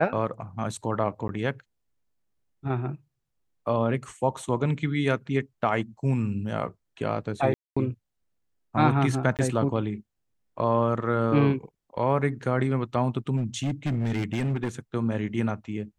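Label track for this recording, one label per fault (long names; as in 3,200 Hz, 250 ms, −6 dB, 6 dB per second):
1.280000	1.290000	drop-out 10 ms
7.540000	7.760000	drop-out 225 ms
9.370000	9.390000	drop-out 18 ms
13.360000	14.690000	clipping −22.5 dBFS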